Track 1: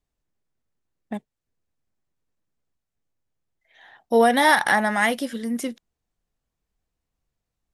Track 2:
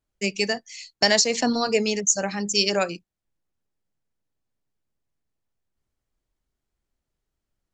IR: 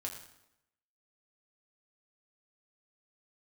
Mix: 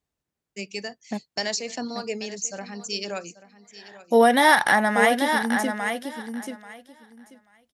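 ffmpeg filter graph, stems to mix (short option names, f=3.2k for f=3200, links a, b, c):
-filter_complex "[0:a]volume=0.5dB,asplit=2[a][b];[b]volume=-7dB[c];[1:a]adelay=350,volume=-9dB,asplit=2[d][e];[e]volume=-16dB[f];[c][f]amix=inputs=2:normalize=0,aecho=0:1:836|1672|2508:1|0.16|0.0256[g];[a][d][g]amix=inputs=3:normalize=0,highpass=71"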